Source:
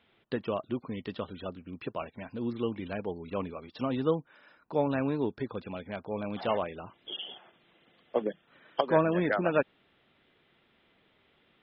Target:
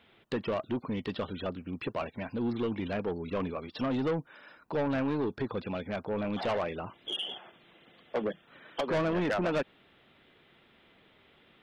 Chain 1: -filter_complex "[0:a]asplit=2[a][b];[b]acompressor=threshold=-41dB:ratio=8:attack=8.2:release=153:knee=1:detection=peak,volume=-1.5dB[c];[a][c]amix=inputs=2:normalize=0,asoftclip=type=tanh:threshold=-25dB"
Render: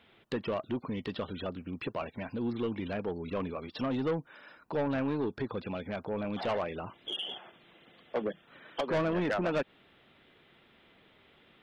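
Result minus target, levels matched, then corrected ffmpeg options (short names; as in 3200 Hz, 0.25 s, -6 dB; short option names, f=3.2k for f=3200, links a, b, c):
compressor: peak gain reduction +10 dB
-filter_complex "[0:a]asplit=2[a][b];[b]acompressor=threshold=-29.5dB:ratio=8:attack=8.2:release=153:knee=1:detection=peak,volume=-1.5dB[c];[a][c]amix=inputs=2:normalize=0,asoftclip=type=tanh:threshold=-25dB"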